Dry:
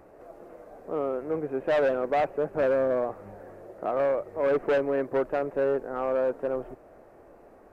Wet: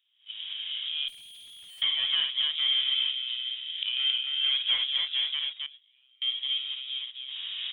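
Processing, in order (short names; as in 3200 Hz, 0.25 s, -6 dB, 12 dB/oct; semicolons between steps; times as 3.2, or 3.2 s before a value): reverse delay 0.355 s, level -11 dB; recorder AGC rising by 36 dB/s; inverted band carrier 3700 Hz; 5.39–6.22 level quantiser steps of 21 dB; gate -36 dBFS, range -20 dB; loudspeakers at several distances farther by 19 m -6 dB, 93 m -4 dB; 1.08–1.82 tube stage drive 43 dB, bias 0.3; 3.65–4.66 HPF 1500 Hz -> 350 Hz 12 dB/oct; gain -4.5 dB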